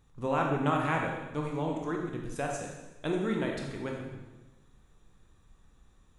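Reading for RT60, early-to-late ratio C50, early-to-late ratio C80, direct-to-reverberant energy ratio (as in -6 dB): 1.1 s, 2.5 dB, 5.0 dB, 0.0 dB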